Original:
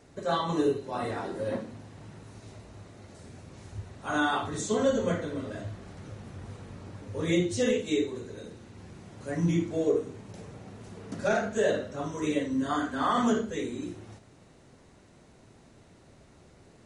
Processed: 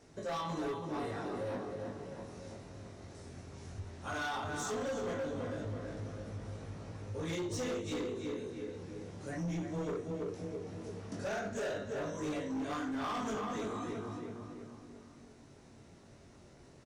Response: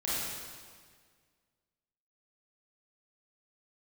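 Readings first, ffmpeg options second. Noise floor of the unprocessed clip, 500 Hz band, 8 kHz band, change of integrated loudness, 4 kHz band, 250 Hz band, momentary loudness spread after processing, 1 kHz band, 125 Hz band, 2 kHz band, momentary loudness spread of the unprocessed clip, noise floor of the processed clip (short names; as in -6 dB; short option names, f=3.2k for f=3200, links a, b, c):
-57 dBFS, -8.5 dB, -6.5 dB, -10.0 dB, -7.5 dB, -8.5 dB, 17 LU, -7.5 dB, -6.0 dB, -7.5 dB, 21 LU, -58 dBFS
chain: -filter_complex "[0:a]asplit=2[a][b];[b]adelay=329,lowpass=f=2.6k:p=1,volume=-5dB,asplit=2[c][d];[d]adelay=329,lowpass=f=2.6k:p=1,volume=0.49,asplit=2[e][f];[f]adelay=329,lowpass=f=2.6k:p=1,volume=0.49,asplit=2[g][h];[h]adelay=329,lowpass=f=2.6k:p=1,volume=0.49,asplit=2[i][j];[j]adelay=329,lowpass=f=2.6k:p=1,volume=0.49,asplit=2[k][l];[l]adelay=329,lowpass=f=2.6k:p=1,volume=0.49[m];[c][e][g][i][k][m]amix=inputs=6:normalize=0[n];[a][n]amix=inputs=2:normalize=0,flanger=delay=19:depth=3.5:speed=0.15,asplit=2[o][p];[p]asoftclip=type=tanh:threshold=-26.5dB,volume=-4.5dB[q];[o][q]amix=inputs=2:normalize=0,acompressor=threshold=-35dB:ratio=1.5,asoftclip=type=hard:threshold=-29dB,equalizer=f=5.6k:w=4.2:g=5.5,volume=-4.5dB"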